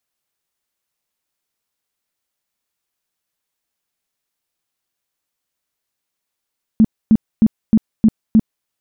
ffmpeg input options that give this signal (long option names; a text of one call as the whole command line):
ffmpeg -f lavfi -i "aevalsrc='0.501*sin(2*PI*220*mod(t,0.31))*lt(mod(t,0.31),10/220)':duration=1.86:sample_rate=44100" out.wav